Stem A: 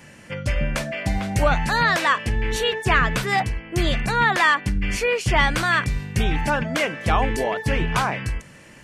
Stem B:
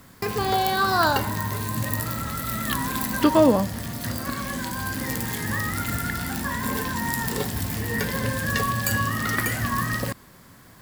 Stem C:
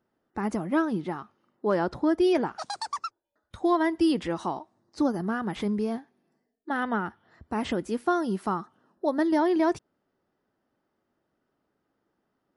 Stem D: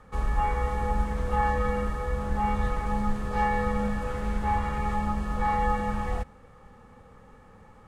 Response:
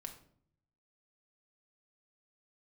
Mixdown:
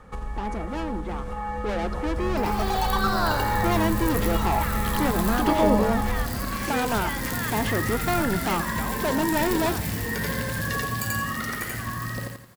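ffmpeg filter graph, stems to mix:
-filter_complex "[0:a]adelay=1700,volume=0.168[s0];[1:a]adelay=2150,volume=0.501,asplit=2[s1][s2];[s2]volume=0.473[s3];[2:a]equalizer=f=640:w=0.48:g=10.5,asoftclip=type=tanh:threshold=0.0562,volume=0.422,asplit=2[s4][s5];[s5]volume=0.596[s6];[3:a]acompressor=threshold=0.0398:ratio=6,volume=1.41,asplit=3[s7][s8][s9];[s8]volume=0.299[s10];[s9]volume=0.266[s11];[s0][s1][s7]amix=inputs=3:normalize=0,acompressor=threshold=0.0224:ratio=6,volume=1[s12];[4:a]atrim=start_sample=2205[s13];[s6][s10]amix=inputs=2:normalize=0[s14];[s14][s13]afir=irnorm=-1:irlink=0[s15];[s3][s11]amix=inputs=2:normalize=0,aecho=0:1:86|172|258|344|430:1|0.34|0.116|0.0393|0.0134[s16];[s4][s12][s15][s16]amix=inputs=4:normalize=0,dynaudnorm=f=260:g=17:m=2.24"

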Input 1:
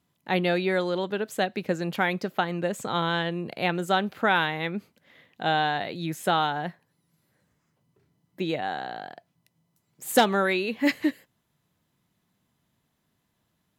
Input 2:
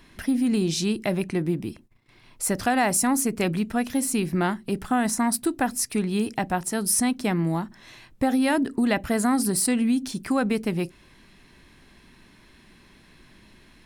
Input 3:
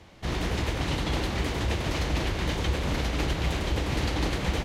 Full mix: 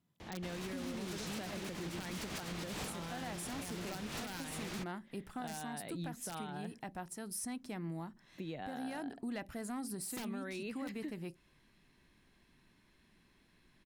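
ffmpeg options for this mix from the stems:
-filter_complex "[0:a]aeval=exprs='(mod(3.98*val(0)+1,2)-1)/3.98':c=same,volume=0.316[s0];[1:a]asoftclip=type=hard:threshold=0.2,adelay=450,volume=0.168[s1];[2:a]equalizer=f=94:t=o:w=2.4:g=-7.5,aeval=exprs='0.02*(abs(mod(val(0)/0.02+3,4)-2)-1)':c=same,adelay=200,volume=1.19[s2];[s0][s2]amix=inputs=2:normalize=0,equalizer=f=170:w=0.89:g=7.5,acompressor=threshold=0.0178:ratio=6,volume=1[s3];[s1][s3]amix=inputs=2:normalize=0,alimiter=level_in=2.82:limit=0.0631:level=0:latency=1:release=167,volume=0.355"

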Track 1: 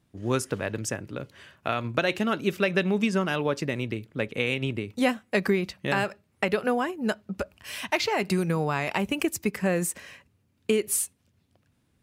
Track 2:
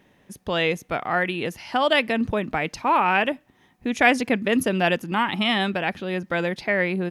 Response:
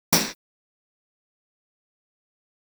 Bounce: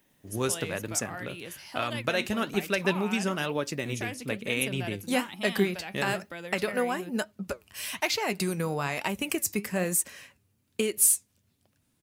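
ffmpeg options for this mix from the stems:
-filter_complex "[0:a]adelay=100,volume=1.06[s0];[1:a]highshelf=f=6700:g=10,acrossover=split=130[s1][s2];[s2]acompressor=threshold=0.0398:ratio=2[s3];[s1][s3]amix=inputs=2:normalize=0,volume=0.398[s4];[s0][s4]amix=inputs=2:normalize=0,highshelf=f=5400:g=12,flanger=delay=3.1:depth=7.1:regen=72:speed=1.1:shape=sinusoidal"

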